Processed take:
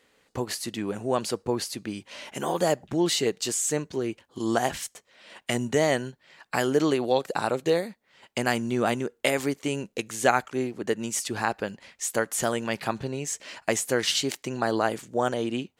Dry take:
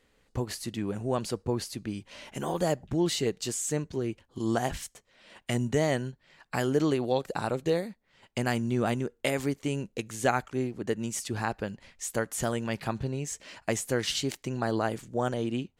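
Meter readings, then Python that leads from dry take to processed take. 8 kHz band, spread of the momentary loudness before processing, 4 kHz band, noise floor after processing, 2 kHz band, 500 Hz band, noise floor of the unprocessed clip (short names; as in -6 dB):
+5.5 dB, 9 LU, +5.5 dB, -69 dBFS, +5.5 dB, +4.0 dB, -70 dBFS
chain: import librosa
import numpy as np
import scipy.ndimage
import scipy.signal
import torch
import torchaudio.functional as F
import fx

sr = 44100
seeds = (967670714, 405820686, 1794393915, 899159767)

y = fx.highpass(x, sr, hz=320.0, slope=6)
y = F.gain(torch.from_numpy(y), 5.5).numpy()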